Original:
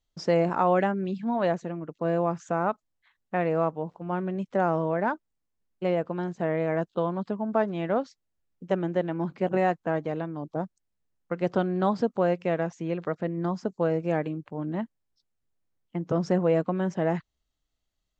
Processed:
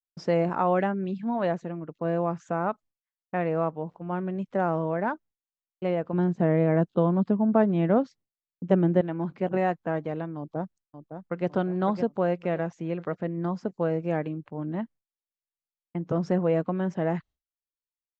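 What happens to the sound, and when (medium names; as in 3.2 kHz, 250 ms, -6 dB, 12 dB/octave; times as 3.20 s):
6.13–9.01 s: peaking EQ 180 Hz +8.5 dB 3 oct
10.37–11.48 s: echo throw 560 ms, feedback 40%, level -8.5 dB
whole clip: expander -44 dBFS; tone controls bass +2 dB, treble -6 dB; trim -1.5 dB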